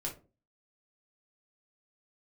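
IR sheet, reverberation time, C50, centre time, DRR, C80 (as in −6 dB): 0.35 s, 10.5 dB, 18 ms, −2.5 dB, 17.0 dB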